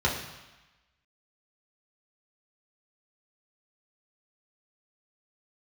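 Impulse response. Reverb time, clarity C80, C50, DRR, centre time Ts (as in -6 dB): 1.1 s, 8.0 dB, 5.5 dB, -4.5 dB, 38 ms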